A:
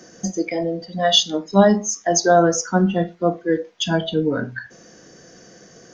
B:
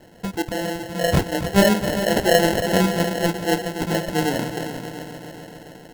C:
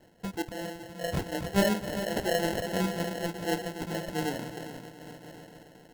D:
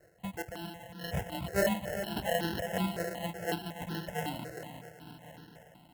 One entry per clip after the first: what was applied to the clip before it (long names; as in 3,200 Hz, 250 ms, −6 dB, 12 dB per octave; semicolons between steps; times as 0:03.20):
echo machine with several playback heads 136 ms, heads second and third, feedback 62%, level −10 dB; decimation without filtering 37×; level −2.5 dB
amplitude modulation by smooth noise, depth 65%; level −7.5 dB
high-pass filter 46 Hz; step-sequenced phaser 5.4 Hz 910–2,200 Hz